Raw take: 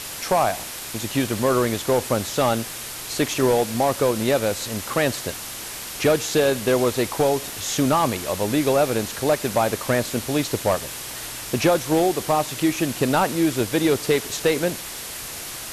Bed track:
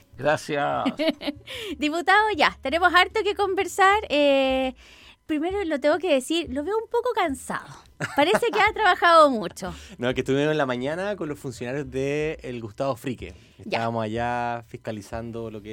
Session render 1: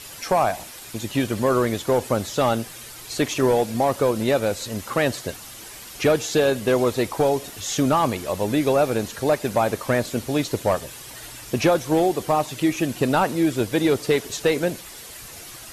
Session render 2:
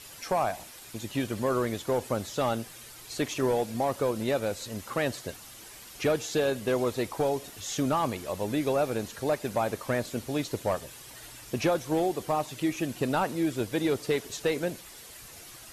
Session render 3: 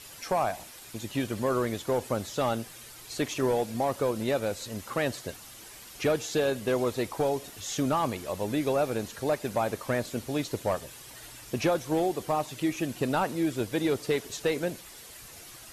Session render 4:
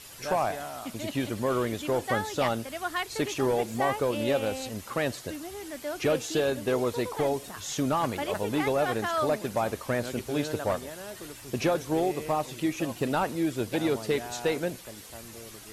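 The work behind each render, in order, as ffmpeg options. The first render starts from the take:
-af "afftdn=nr=9:nf=-34"
-af "volume=-7.5dB"
-af anull
-filter_complex "[1:a]volume=-14dB[a];[0:a][a]amix=inputs=2:normalize=0"

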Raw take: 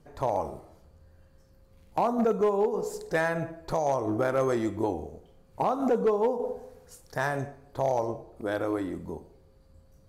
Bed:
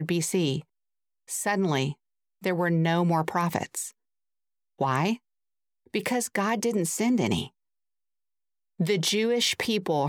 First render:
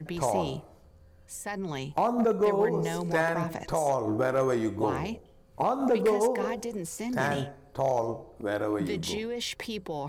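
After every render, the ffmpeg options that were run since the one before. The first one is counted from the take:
-filter_complex "[1:a]volume=-9dB[a];[0:a][a]amix=inputs=2:normalize=0"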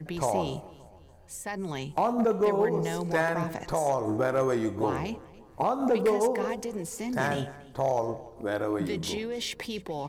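-af "aecho=1:1:287|574|861:0.0891|0.0392|0.0173"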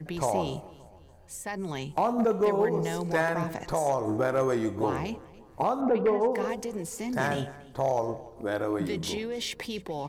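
-filter_complex "[0:a]asplit=3[a][b][c];[a]afade=t=out:st=5.8:d=0.02[d];[b]lowpass=2.2k,afade=t=in:st=5.8:d=0.02,afade=t=out:st=6.31:d=0.02[e];[c]afade=t=in:st=6.31:d=0.02[f];[d][e][f]amix=inputs=3:normalize=0"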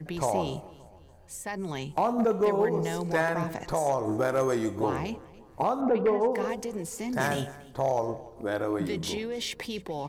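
-filter_complex "[0:a]asettb=1/sr,asplit=3[a][b][c];[a]atrim=end=4.114[d];[b]atrim=start=4.11:end=4.8,asetpts=PTS-STARTPTS,afade=t=in:d=0.004:c=qsin,afade=t=out:st=0.686:d=0.004:c=qsin,bass=f=250:g=-1,treble=f=4k:g=5[e];[c]atrim=start=4.796[f];[d][e]acrossfade=d=0.004:c1=hsin:c2=qsin[g];[g][f]acrossfade=d=0.004:c1=qsin:c2=hsin,asettb=1/sr,asplit=3[h][i][j];[h]atrim=end=7.204[k];[i]atrim=start=7.2:end=7.71,asetpts=PTS-STARTPTS,afade=t=in:d=0.004:c=qsin,afade=t=out:st=0.506:d=0.004:c=qsin,highshelf=f=6.5k:g=11[l];[j]atrim=start=7.706[m];[k][l]acrossfade=d=0.004:c1=hsin:c2=qsin[n];[n][m]acrossfade=d=0.004:c1=qsin:c2=hsin"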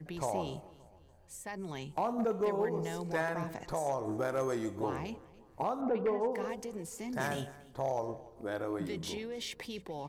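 -af "volume=-7dB"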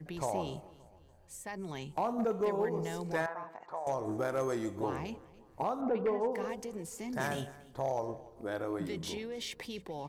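-filter_complex "[0:a]asettb=1/sr,asplit=3[a][b][c];[a]atrim=end=3.264[d];[b]atrim=start=3.26:end=3.87,asetpts=PTS-STARTPTS,afade=t=in:d=0.004:c=qsin,afade=t=out:st=0.606:d=0.004:c=qsin,bandpass=f=1k:t=q:w=1.6[e];[c]atrim=start=3.866[f];[d][e]acrossfade=d=0.004:c1=hsin:c2=qsin[g];[g][f]acrossfade=d=0.004:c1=qsin:c2=hsin"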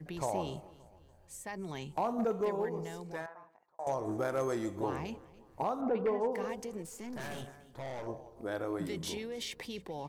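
-filter_complex "[0:a]asettb=1/sr,asplit=3[a][b][c];[a]atrim=end=6.824[d];[b]atrim=start=6.82:end=8.07,asetpts=PTS-STARTPTS,afade=t=in:d=0.004:c=qsin,afade=t=out:st=1.246:d=0.004:c=qsin,aeval=exprs='(tanh(79.4*val(0)+0.5)-tanh(0.5))/79.4':c=same[e];[c]atrim=start=8.066[f];[d][e]acrossfade=d=0.004:c1=hsin:c2=qsin[g];[g][f]acrossfade=d=0.004:c1=qsin:c2=hsin,asettb=1/sr,asplit=3[h][i][j];[h]atrim=end=8.794[k];[i]atrim=start=8.79:end=9.44,asetpts=PTS-STARTPTS,afade=t=in:d=0.004:c=qsin,afade=t=out:st=0.646:d=0.004:c=qsin,equalizer=f=11k:t=o:w=1.3:g=4.5[l];[j]atrim=start=9.436[m];[k][l]acrossfade=d=0.004:c1=hsin:c2=qsin[n];[n][m]acrossfade=d=0.004:c1=qsin:c2=hsin,asplit=2[o][p];[o]atrim=end=3.79,asetpts=PTS-STARTPTS,afade=t=out:st=2.28:d=1.51[q];[p]atrim=start=3.79,asetpts=PTS-STARTPTS,afade=t=in:d=0.004:c=hsin[r];[q][r]concat=n=2:v=0:a=1"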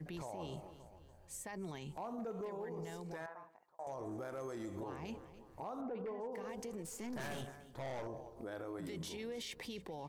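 -af "acompressor=threshold=-34dB:ratio=6,alimiter=level_in=12.5dB:limit=-24dB:level=0:latency=1:release=63,volume=-12.5dB"

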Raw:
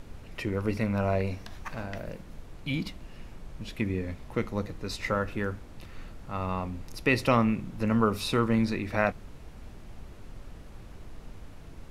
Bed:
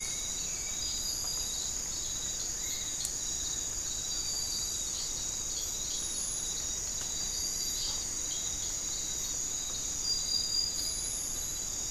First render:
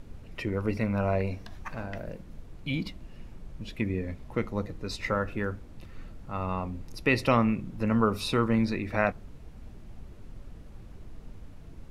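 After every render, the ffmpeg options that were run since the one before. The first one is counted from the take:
-af "afftdn=nr=6:nf=-47"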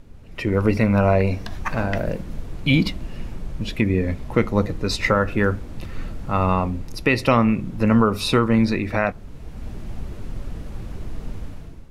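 -af "dynaudnorm=f=130:g=7:m=14dB,alimiter=limit=-5.5dB:level=0:latency=1:release=319"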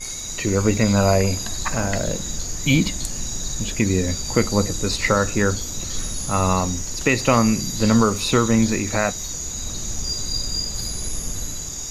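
-filter_complex "[1:a]volume=4.5dB[a];[0:a][a]amix=inputs=2:normalize=0"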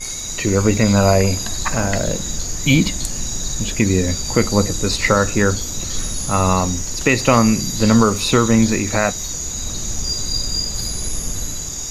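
-af "volume=3.5dB,alimiter=limit=-2dB:level=0:latency=1"

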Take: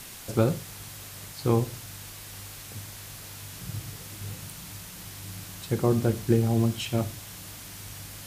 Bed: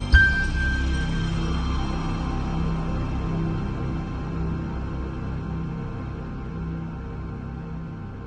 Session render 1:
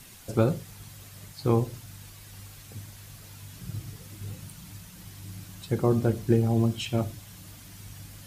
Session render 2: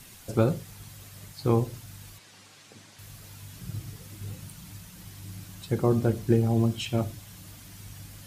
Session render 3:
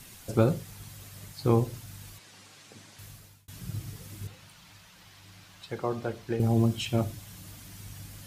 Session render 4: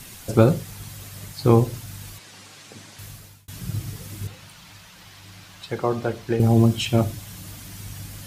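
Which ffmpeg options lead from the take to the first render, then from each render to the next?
-af "afftdn=nr=8:nf=-43"
-filter_complex "[0:a]asettb=1/sr,asplit=3[a][b][c];[a]atrim=end=2.184[d];[b]atrim=start=2.18:end=2.99,asetpts=PTS-STARTPTS,afade=t=in:d=0.004:c=qsin,afade=t=out:st=0.806:d=0.004:c=qsin,highpass=250,lowpass=6.9k[e];[c]atrim=start=2.986[f];[d][e]acrossfade=d=0.004:c1=hsin:c2=qsin[g];[g][f]acrossfade=d=0.004:c1=qsin:c2=hsin"
-filter_complex "[0:a]asettb=1/sr,asplit=3[a][b][c];[a]atrim=end=4.274[d];[b]atrim=start=4.27:end=6.4,asetpts=PTS-STARTPTS,afade=t=in:d=0.004:c=qsin,afade=t=out:st=2.126:d=0.004:c=qsin,acrossover=split=510 5500:gain=0.224 1 0.224[e][f][g];[e][f][g]amix=inputs=3:normalize=0[h];[c]atrim=start=6.396[i];[d][h]acrossfade=d=0.004:c1=hsin:c2=qsin[j];[j][i]acrossfade=d=0.004:c1=qsin:c2=hsin,asplit=2[k][l];[k]atrim=end=3.48,asetpts=PTS-STARTPTS,afade=t=out:st=3.03:d=0.45[m];[l]atrim=start=3.48,asetpts=PTS-STARTPTS,afade=t=in:d=0.004:c=hsin[n];[m][n]concat=n=2:v=0:a=1"
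-af "volume=7.5dB"

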